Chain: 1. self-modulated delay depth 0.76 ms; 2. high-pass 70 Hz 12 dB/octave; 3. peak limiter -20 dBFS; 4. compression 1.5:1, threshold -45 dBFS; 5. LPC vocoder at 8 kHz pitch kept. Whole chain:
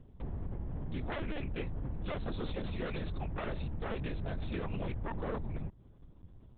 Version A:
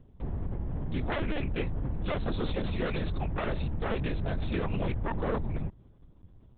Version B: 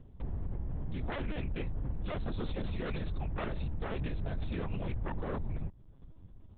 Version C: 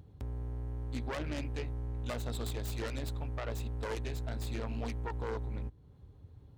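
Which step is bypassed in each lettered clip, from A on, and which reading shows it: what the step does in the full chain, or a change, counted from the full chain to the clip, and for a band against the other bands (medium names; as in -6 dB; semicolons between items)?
4, mean gain reduction 5.0 dB; 2, 125 Hz band +2.0 dB; 5, 4 kHz band +3.0 dB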